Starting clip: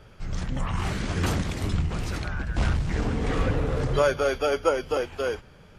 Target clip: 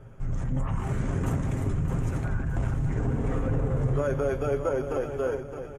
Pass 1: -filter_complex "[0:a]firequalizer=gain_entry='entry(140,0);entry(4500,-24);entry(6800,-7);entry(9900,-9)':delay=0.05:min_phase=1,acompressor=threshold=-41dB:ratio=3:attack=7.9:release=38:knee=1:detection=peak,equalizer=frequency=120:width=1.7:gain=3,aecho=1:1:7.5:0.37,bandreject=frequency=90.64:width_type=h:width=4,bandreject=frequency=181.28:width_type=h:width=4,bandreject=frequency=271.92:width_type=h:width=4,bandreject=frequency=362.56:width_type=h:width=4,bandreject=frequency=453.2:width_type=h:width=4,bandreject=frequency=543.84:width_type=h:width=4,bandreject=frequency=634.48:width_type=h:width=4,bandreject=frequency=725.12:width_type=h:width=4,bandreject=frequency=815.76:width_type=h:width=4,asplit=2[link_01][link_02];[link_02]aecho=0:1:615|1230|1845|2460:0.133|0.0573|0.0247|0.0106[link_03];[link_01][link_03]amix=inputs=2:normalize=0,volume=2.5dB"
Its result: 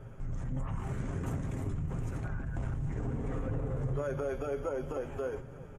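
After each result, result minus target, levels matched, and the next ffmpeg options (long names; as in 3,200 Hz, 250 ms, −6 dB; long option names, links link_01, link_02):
downward compressor: peak gain reduction +7.5 dB; echo-to-direct −8.5 dB
-filter_complex "[0:a]firequalizer=gain_entry='entry(140,0);entry(4500,-24);entry(6800,-7);entry(9900,-9)':delay=0.05:min_phase=1,acompressor=threshold=-30dB:ratio=3:attack=7.9:release=38:knee=1:detection=peak,equalizer=frequency=120:width=1.7:gain=3,aecho=1:1:7.5:0.37,bandreject=frequency=90.64:width_type=h:width=4,bandreject=frequency=181.28:width_type=h:width=4,bandreject=frequency=271.92:width_type=h:width=4,bandreject=frequency=362.56:width_type=h:width=4,bandreject=frequency=453.2:width_type=h:width=4,bandreject=frequency=543.84:width_type=h:width=4,bandreject=frequency=634.48:width_type=h:width=4,bandreject=frequency=725.12:width_type=h:width=4,bandreject=frequency=815.76:width_type=h:width=4,asplit=2[link_01][link_02];[link_02]aecho=0:1:615|1230|1845|2460:0.133|0.0573|0.0247|0.0106[link_03];[link_01][link_03]amix=inputs=2:normalize=0,volume=2.5dB"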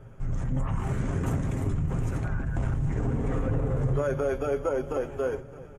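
echo-to-direct −8.5 dB
-filter_complex "[0:a]firequalizer=gain_entry='entry(140,0);entry(4500,-24);entry(6800,-7);entry(9900,-9)':delay=0.05:min_phase=1,acompressor=threshold=-30dB:ratio=3:attack=7.9:release=38:knee=1:detection=peak,equalizer=frequency=120:width=1.7:gain=3,aecho=1:1:7.5:0.37,bandreject=frequency=90.64:width_type=h:width=4,bandreject=frequency=181.28:width_type=h:width=4,bandreject=frequency=271.92:width_type=h:width=4,bandreject=frequency=362.56:width_type=h:width=4,bandreject=frequency=453.2:width_type=h:width=4,bandreject=frequency=543.84:width_type=h:width=4,bandreject=frequency=634.48:width_type=h:width=4,bandreject=frequency=725.12:width_type=h:width=4,bandreject=frequency=815.76:width_type=h:width=4,asplit=2[link_01][link_02];[link_02]aecho=0:1:615|1230|1845|2460|3075:0.355|0.153|0.0656|0.0282|0.0121[link_03];[link_01][link_03]amix=inputs=2:normalize=0,volume=2.5dB"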